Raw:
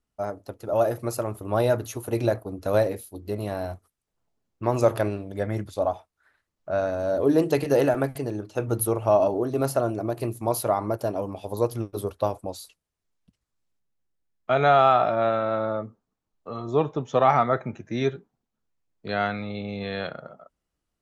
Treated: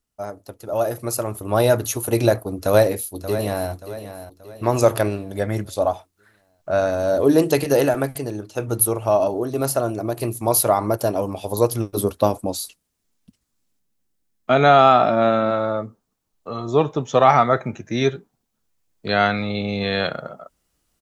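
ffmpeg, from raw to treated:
ffmpeg -i in.wav -filter_complex "[0:a]asplit=2[link_01][link_02];[link_02]afade=type=in:start_time=2.57:duration=0.01,afade=type=out:start_time=3.71:duration=0.01,aecho=0:1:580|1160|1740|2320|2900:0.281838|0.126827|0.0570723|0.0256825|0.0115571[link_03];[link_01][link_03]amix=inputs=2:normalize=0,asettb=1/sr,asplit=3[link_04][link_05][link_06];[link_04]atrim=end=11.974[link_07];[link_05]atrim=start=11.97:end=15.51,asetpts=PTS-STARTPTS,afade=type=in:duration=0.004:curve=qsin,afade=type=out:start_time=3.536:duration=0.004:curve=qsin,equalizer=frequency=240:width=1.7:gain=8.5[link_08];[link_06]atrim=start=15.506[link_09];[link_07][link_08]acrossfade=duration=0.004:curve1=hsin:curve2=qsin[link_10];[link_10][link_09]acrossfade=duration=0.004:curve1=qsin:curve2=hsin,highshelf=frequency=4100:gain=9.5,dynaudnorm=framelen=210:gausssize=13:maxgain=11.5dB,volume=-1dB" out.wav

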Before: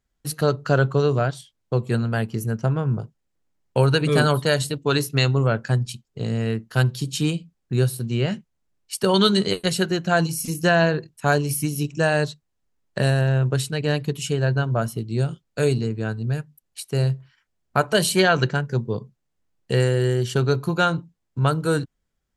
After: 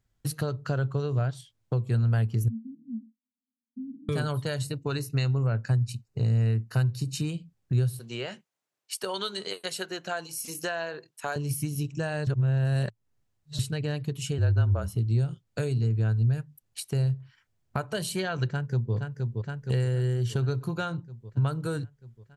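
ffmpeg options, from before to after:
ffmpeg -i in.wav -filter_complex "[0:a]asettb=1/sr,asplit=3[link_01][link_02][link_03];[link_01]atrim=end=2.484[link_04];[link_02]atrim=start=2.48:end=4.09,asetpts=PTS-STARTPTS,afade=type=in:duration=0.004:curve=qsin,afade=type=out:start_time=1.606:duration=0.004:curve=qsin,asuperpass=centerf=240:order=8:qfactor=4.6[link_05];[link_03]atrim=start=4.086[link_06];[link_04][link_05]acrossfade=duration=0.004:curve1=hsin:curve2=qsin[link_07];[link_07][link_06]acrossfade=duration=0.004:curve1=qsin:curve2=hsin,asettb=1/sr,asplit=3[link_08][link_09][link_10];[link_08]atrim=end=4.624[link_11];[link_09]atrim=start=4.62:end=7.3,asetpts=PTS-STARTPTS,afade=type=in:duration=0.004:curve=qsin,afade=type=out:start_time=2.676:duration=0.004:curve=qsin,asuperstop=centerf=3300:order=4:qfactor=5.5[link_12];[link_10]atrim=start=7.296[link_13];[link_11][link_12]acrossfade=duration=0.004:curve1=hsin:curve2=qsin[link_14];[link_14][link_13]acrossfade=duration=0.004:curve1=qsin:curve2=hsin,asettb=1/sr,asplit=3[link_15][link_16][link_17];[link_15]atrim=end=7.994[link_18];[link_16]atrim=start=7.99:end=11.36,asetpts=PTS-STARTPTS,afade=type=in:duration=0.004:curve=qsin,afade=type=out:start_time=3.366:duration=0.004:curve=qsin,highpass=480[link_19];[link_17]atrim=start=11.356[link_20];[link_18][link_19]acrossfade=duration=0.004:curve1=hsin:curve2=qsin[link_21];[link_21][link_20]acrossfade=duration=0.004:curve1=qsin:curve2=hsin,asettb=1/sr,asplit=3[link_22][link_23][link_24];[link_22]atrim=end=14.384[link_25];[link_23]atrim=start=14.38:end=14.95,asetpts=PTS-STARTPTS,afade=type=in:duration=0.004:curve=qsin,afade=type=out:start_time=0.566:duration=0.004:curve=qsin,afreqshift=-32[link_26];[link_24]atrim=start=14.946[link_27];[link_25][link_26]acrossfade=duration=0.004:curve1=hsin:curve2=qsin[link_28];[link_28][link_27]acrossfade=duration=0.004:curve1=qsin:curve2=hsin,asplit=2[link_29][link_30];[link_30]afade=type=in:start_time=18.48:duration=0.01,afade=type=out:start_time=18.94:duration=0.01,aecho=0:1:470|940|1410|1880|2350|2820|3290|3760|4230:0.316228|0.205548|0.133606|0.0868441|0.0564486|0.0366916|0.0238495|0.0155022|0.0100764[link_31];[link_29][link_31]amix=inputs=2:normalize=0,asplit=3[link_32][link_33][link_34];[link_32]atrim=end=12.272[link_35];[link_33]atrim=start=12.268:end=13.592,asetpts=PTS-STARTPTS,areverse[link_36];[link_34]atrim=start=13.588[link_37];[link_35][link_36]acrossfade=duration=0.004:curve1=hsin:curve2=hsin[link_38];[link_38][link_37]acrossfade=duration=0.004:curve1=hsin:curve2=hsin,acompressor=threshold=-33dB:ratio=3,equalizer=frequency=110:width_type=o:width=0.59:gain=13" out.wav

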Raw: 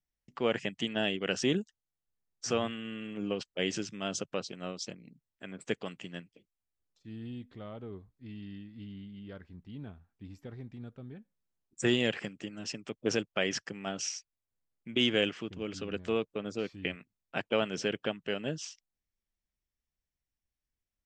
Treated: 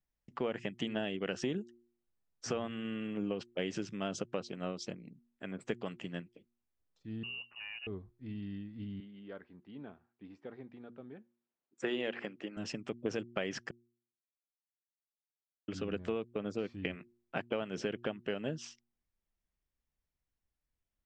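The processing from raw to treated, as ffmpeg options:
ffmpeg -i in.wav -filter_complex "[0:a]asettb=1/sr,asplit=3[link_01][link_02][link_03];[link_01]atrim=end=7.234[link_04];[link_02]atrim=start=7.23:end=7.87,asetpts=PTS-STARTPTS,afade=type=in:duration=0.004:curve=qsin,afade=type=out:start_time=0.636:duration=0.004:curve=qsin,lowpass=frequency=2600:width_type=q:width=0.5098,lowpass=frequency=2600:width_type=q:width=0.6013,lowpass=frequency=2600:width_type=q:width=0.9,lowpass=frequency=2600:width_type=q:width=2.563,afreqshift=-3000[link_05];[link_03]atrim=start=7.866[link_06];[link_04][link_05]acrossfade=duration=0.004:curve1=hsin:curve2=qsin[link_07];[link_07][link_06]acrossfade=duration=0.004:curve1=qsin:curve2=hsin,asettb=1/sr,asplit=3[link_08][link_09][link_10];[link_08]atrim=end=9.004[link_11];[link_09]atrim=start=9:end=12.57,asetpts=PTS-STARTPTS,afade=type=in:duration=0.004:curve=qsin,afade=type=out:start_time=3.566:duration=0.004:curve=qsin,highpass=300,lowpass=4000[link_12];[link_10]atrim=start=12.566[link_13];[link_11][link_12]acrossfade=duration=0.004:curve1=hsin:curve2=qsin[link_14];[link_14][link_13]acrossfade=duration=0.004:curve1=qsin:curve2=hsin,asplit=3[link_15][link_16][link_17];[link_15]atrim=end=13.71,asetpts=PTS-STARTPTS,afade=type=out:start_time=13.706:duration=0.004:curve=hsin[link_18];[link_16]atrim=start=13.71:end=15.68,asetpts=PTS-STARTPTS,volume=0[link_19];[link_17]atrim=start=15.68,asetpts=PTS-STARTPTS,afade=type=in:duration=0.004:curve=hsin[link_20];[link_18][link_19][link_20]concat=n=3:v=0:a=1,highshelf=frequency=3100:gain=-11,bandreject=frequency=118.5:width_type=h:width=4,bandreject=frequency=237:width_type=h:width=4,bandreject=frequency=355.5:width_type=h:width=4,acompressor=threshold=-34dB:ratio=6,volume=2.5dB" out.wav

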